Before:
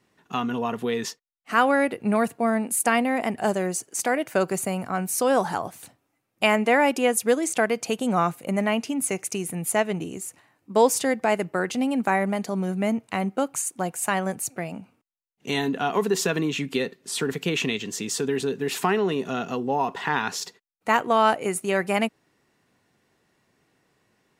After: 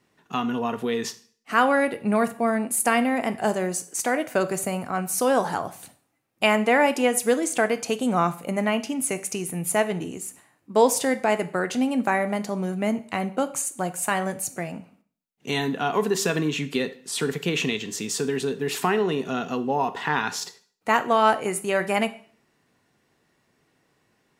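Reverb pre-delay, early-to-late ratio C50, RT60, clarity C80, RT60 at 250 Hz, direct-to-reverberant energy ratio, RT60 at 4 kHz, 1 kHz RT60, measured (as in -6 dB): 4 ms, 16.0 dB, 0.50 s, 20.0 dB, 0.55 s, 11.0 dB, 0.45 s, 0.50 s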